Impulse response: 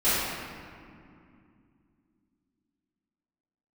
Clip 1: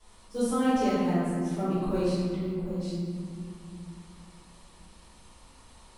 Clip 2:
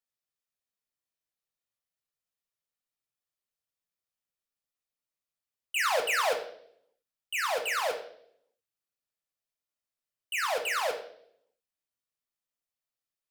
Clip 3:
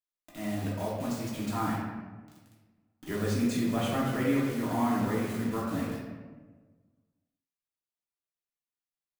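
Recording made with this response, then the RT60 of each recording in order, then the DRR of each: 1; 2.4, 0.65, 1.4 seconds; −16.0, 3.0, −7.0 decibels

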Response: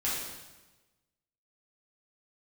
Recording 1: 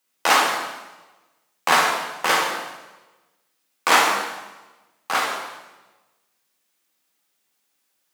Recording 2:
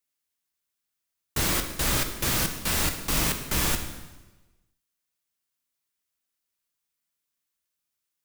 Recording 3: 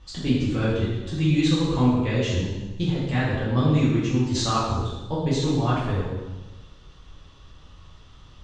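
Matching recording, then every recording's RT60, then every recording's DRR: 3; 1.2, 1.2, 1.2 seconds; −2.5, 5.0, −9.0 decibels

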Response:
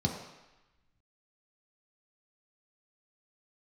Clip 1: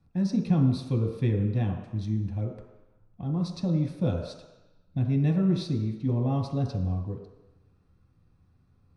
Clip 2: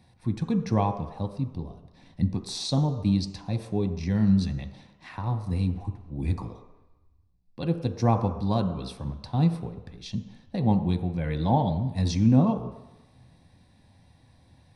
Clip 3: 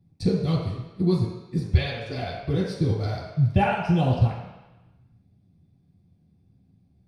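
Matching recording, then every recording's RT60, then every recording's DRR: 1; 1.0, 1.0, 1.0 seconds; −0.5, 6.0, −9.5 decibels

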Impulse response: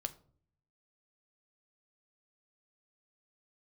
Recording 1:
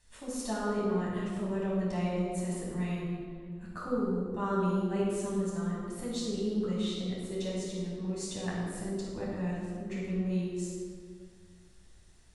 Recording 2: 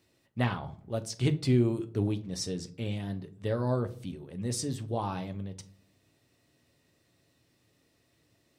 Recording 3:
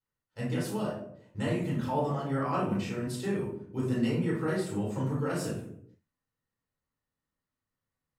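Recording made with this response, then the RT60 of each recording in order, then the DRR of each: 2; 2.0, 0.50, 0.70 seconds; −7.0, 8.5, −6.5 decibels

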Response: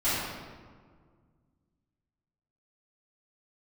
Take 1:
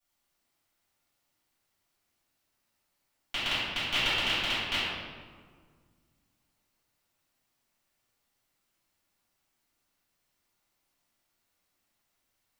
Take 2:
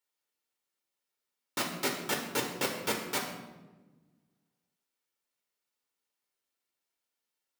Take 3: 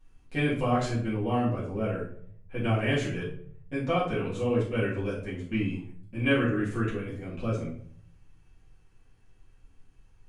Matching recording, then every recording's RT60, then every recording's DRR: 1; 1.8, 1.2, 0.60 seconds; −16.0, 0.0, −9.5 decibels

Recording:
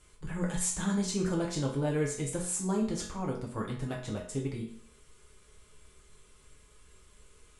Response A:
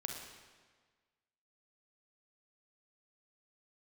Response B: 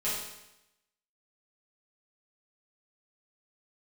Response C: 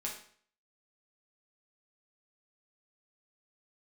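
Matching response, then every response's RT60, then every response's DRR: C; 1.5, 0.90, 0.50 seconds; 1.5, −10.0, −3.5 decibels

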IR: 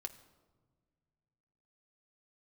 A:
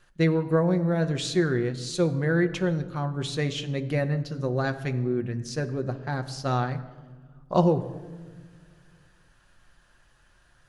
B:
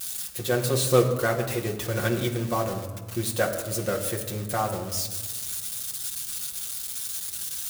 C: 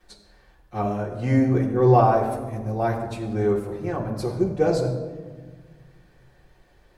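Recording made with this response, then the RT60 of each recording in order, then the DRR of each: A; non-exponential decay, 1.5 s, 1.4 s; 6.5, −1.0, −8.0 decibels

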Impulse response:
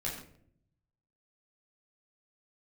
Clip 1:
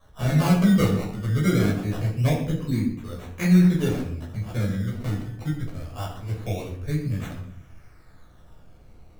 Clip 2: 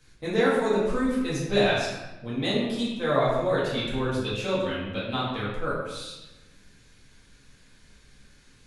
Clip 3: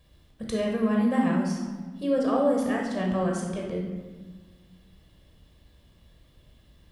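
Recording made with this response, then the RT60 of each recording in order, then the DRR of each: 1; 0.60, 1.0, 1.4 seconds; −5.5, −9.0, −1.0 decibels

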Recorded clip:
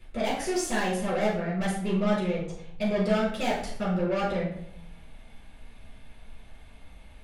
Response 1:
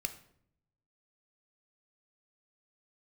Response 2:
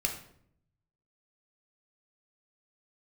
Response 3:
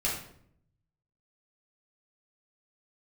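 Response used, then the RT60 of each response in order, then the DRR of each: 3; 0.65, 0.65, 0.65 seconds; 8.0, 2.5, −5.5 decibels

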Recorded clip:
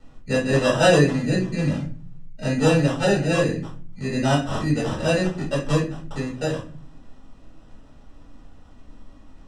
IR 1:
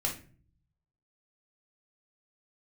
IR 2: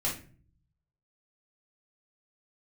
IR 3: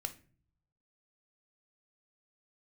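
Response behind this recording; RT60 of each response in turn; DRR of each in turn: 2; 0.40 s, 0.40 s, non-exponential decay; −1.5, −5.5, 7.5 decibels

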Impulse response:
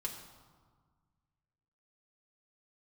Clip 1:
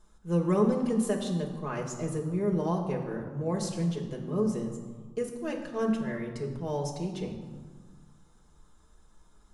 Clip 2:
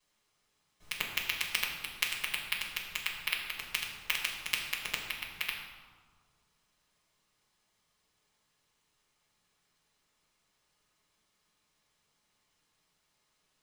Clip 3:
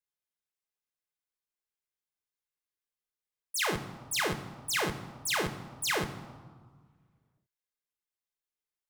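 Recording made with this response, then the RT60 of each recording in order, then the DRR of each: 1; 1.6, 1.6, 1.7 seconds; −1.5, −10.0, 6.5 decibels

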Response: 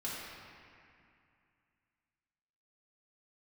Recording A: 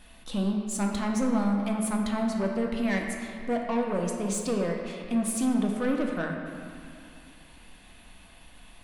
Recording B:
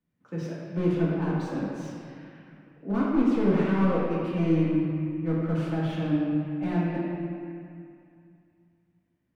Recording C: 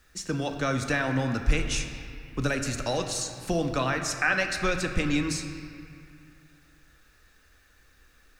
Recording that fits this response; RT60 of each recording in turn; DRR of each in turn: B; 2.4, 2.4, 2.4 seconds; 0.5, −8.0, 4.5 decibels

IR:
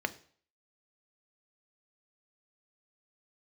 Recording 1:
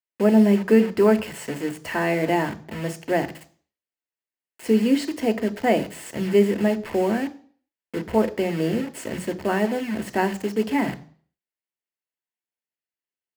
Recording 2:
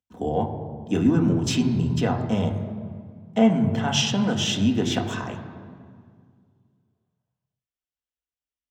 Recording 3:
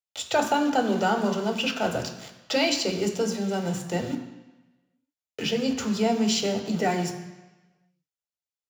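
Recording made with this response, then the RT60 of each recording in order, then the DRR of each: 1; 0.50, 1.9, 1.1 seconds; 9.0, 2.5, 4.0 decibels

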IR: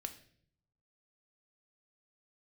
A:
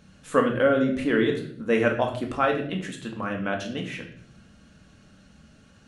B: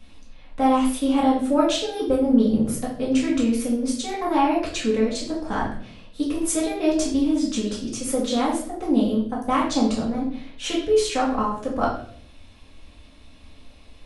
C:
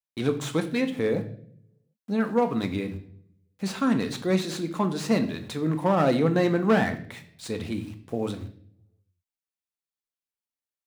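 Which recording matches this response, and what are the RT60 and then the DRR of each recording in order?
C; 0.60, 0.55, 0.60 seconds; 1.5, −6.0, 7.0 decibels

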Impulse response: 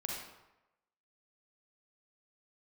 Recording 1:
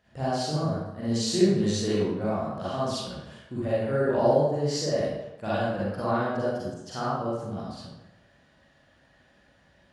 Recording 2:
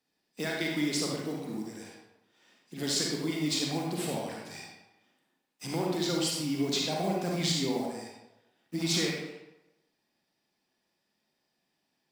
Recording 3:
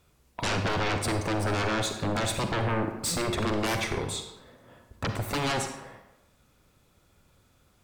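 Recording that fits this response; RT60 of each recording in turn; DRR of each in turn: 2; 0.95, 0.95, 0.95 seconds; −9.5, −2.0, 5.5 decibels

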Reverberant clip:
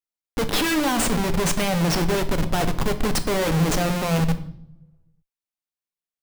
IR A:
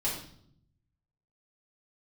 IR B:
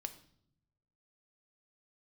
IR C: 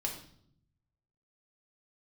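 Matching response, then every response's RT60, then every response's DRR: B; 0.65 s, non-exponential decay, 0.65 s; −8.0, 8.0, −0.5 decibels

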